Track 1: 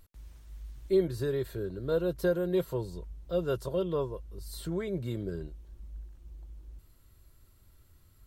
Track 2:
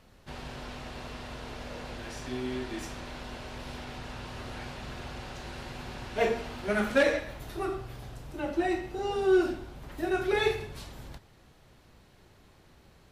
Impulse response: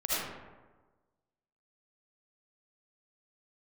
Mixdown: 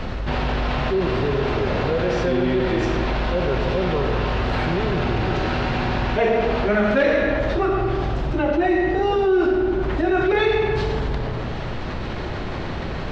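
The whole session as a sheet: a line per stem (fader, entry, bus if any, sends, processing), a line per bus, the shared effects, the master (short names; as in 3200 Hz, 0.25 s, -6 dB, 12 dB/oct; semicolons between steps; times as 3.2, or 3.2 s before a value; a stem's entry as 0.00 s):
-7.0 dB, 0.00 s, send -11 dB, dry
+1.5 dB, 0.00 s, send -12 dB, dry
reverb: on, RT60 1.3 s, pre-delay 35 ms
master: Gaussian blur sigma 2 samples; fast leveller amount 70%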